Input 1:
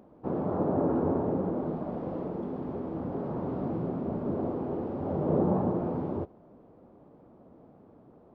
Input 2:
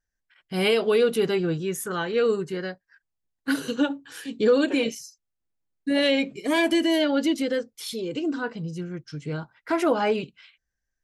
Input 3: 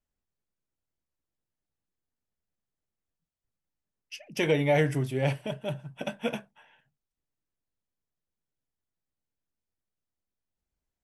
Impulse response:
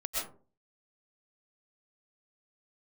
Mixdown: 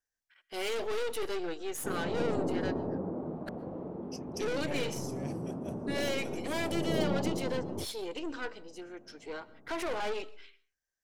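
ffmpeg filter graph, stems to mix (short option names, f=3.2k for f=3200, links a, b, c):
-filter_complex "[0:a]highshelf=f=2.3k:g=-10.5,adelay=1600,volume=-5.5dB[a];[1:a]highpass=f=360:w=0.5412,highpass=f=360:w=1.3066,aeval=exprs='(tanh(31.6*val(0)+0.6)-tanh(0.6))/31.6':c=same,volume=-2.5dB,asplit=3[b][c][d];[b]atrim=end=3.49,asetpts=PTS-STARTPTS,afade=t=out:st=3.486:d=0.004:c=hsin[e];[c]atrim=start=3.49:end=4.34,asetpts=PTS-STARTPTS,volume=0[f];[d]atrim=start=4.34,asetpts=PTS-STARTPTS,afade=t=in:d=0.004:c=hsin[g];[e][f][g]concat=n=3:v=0:a=1,asplit=2[h][i];[i]volume=-22.5dB[j];[2:a]highshelf=f=4.2k:t=q:w=3:g=8.5,acompressor=threshold=-25dB:ratio=6,volume=-13.5dB[k];[3:a]atrim=start_sample=2205[l];[j][l]afir=irnorm=-1:irlink=0[m];[a][h][k][m]amix=inputs=4:normalize=0"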